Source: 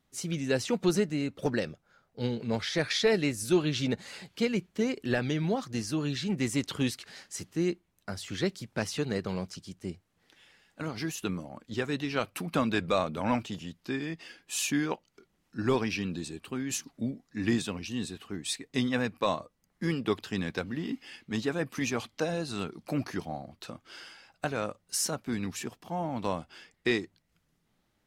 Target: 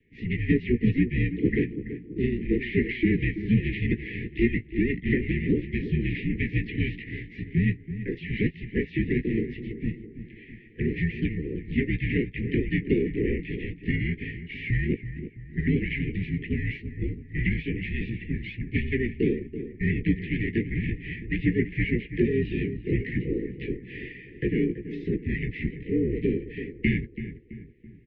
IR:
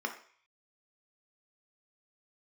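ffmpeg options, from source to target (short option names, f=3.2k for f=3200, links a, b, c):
-filter_complex "[0:a]equalizer=f=170:t=o:w=0.26:g=-6,asplit=4[a][b][c][d];[b]asetrate=33038,aresample=44100,atempo=1.33484,volume=-5dB[e];[c]asetrate=55563,aresample=44100,atempo=0.793701,volume=-2dB[f];[d]asetrate=58866,aresample=44100,atempo=0.749154,volume=-17dB[g];[a][e][f][g]amix=inputs=4:normalize=0,apsyclip=14dB,acrossover=split=300|620[h][i][j];[h]acompressor=threshold=-28dB:ratio=4[k];[i]acompressor=threshold=-27dB:ratio=4[l];[j]acompressor=threshold=-23dB:ratio=4[m];[k][l][m]amix=inputs=3:normalize=0,asuperstop=centerf=1200:order=20:qfactor=0.86,asplit=2[n][o];[o]adelay=17,volume=-11dB[p];[n][p]amix=inputs=2:normalize=0,asplit=2[q][r];[r]adelay=331,lowpass=f=1.6k:p=1,volume=-10.5dB,asplit=2[s][t];[t]adelay=331,lowpass=f=1.6k:p=1,volume=0.5,asplit=2[u][v];[v]adelay=331,lowpass=f=1.6k:p=1,volume=0.5,asplit=2[w][x];[x]adelay=331,lowpass=f=1.6k:p=1,volume=0.5,asplit=2[y][z];[z]adelay=331,lowpass=f=1.6k:p=1,volume=0.5[aa];[s][u][w][y][aa]amix=inputs=5:normalize=0[ab];[q][ab]amix=inputs=2:normalize=0,highpass=f=330:t=q:w=0.5412,highpass=f=330:t=q:w=1.307,lowpass=f=2.4k:t=q:w=0.5176,lowpass=f=2.4k:t=q:w=0.7071,lowpass=f=2.4k:t=q:w=1.932,afreqshift=-240"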